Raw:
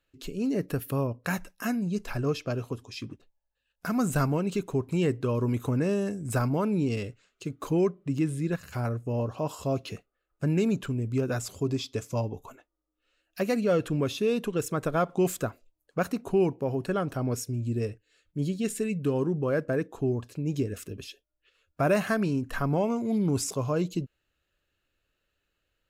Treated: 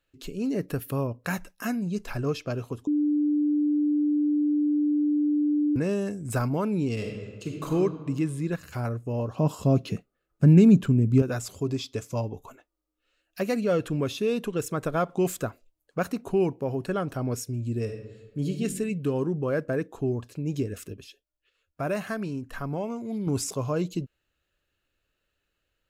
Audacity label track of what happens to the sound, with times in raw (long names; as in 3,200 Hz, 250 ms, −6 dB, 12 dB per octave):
2.870000	5.760000	beep over 296 Hz −20.5 dBFS
6.940000	7.730000	thrown reverb, RT60 1.6 s, DRR 0 dB
9.380000	11.220000	parametric band 180 Hz +12 dB 1.8 octaves
17.820000	18.610000	thrown reverb, RT60 1.2 s, DRR 3.5 dB
20.940000	23.270000	clip gain −5 dB